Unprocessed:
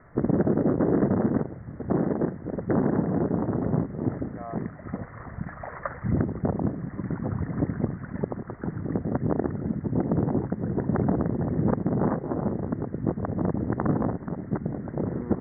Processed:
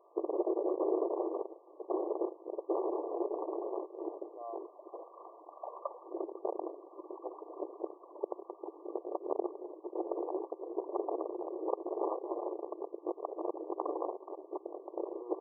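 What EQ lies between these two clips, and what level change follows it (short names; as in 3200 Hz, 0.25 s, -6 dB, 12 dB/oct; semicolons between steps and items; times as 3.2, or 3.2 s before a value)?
brick-wall FIR band-pass 320–1200 Hz; -5.0 dB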